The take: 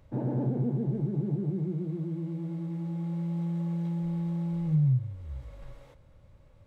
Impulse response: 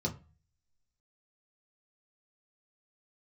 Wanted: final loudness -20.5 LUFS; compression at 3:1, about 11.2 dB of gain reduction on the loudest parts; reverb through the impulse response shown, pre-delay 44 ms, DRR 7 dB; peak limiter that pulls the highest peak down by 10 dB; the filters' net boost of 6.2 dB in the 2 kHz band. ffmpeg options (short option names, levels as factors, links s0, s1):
-filter_complex "[0:a]equalizer=f=2000:t=o:g=7.5,acompressor=threshold=0.0141:ratio=3,alimiter=level_in=5.01:limit=0.0631:level=0:latency=1,volume=0.2,asplit=2[s0][s1];[1:a]atrim=start_sample=2205,adelay=44[s2];[s1][s2]afir=irnorm=-1:irlink=0,volume=0.282[s3];[s0][s3]amix=inputs=2:normalize=0,volume=8.41"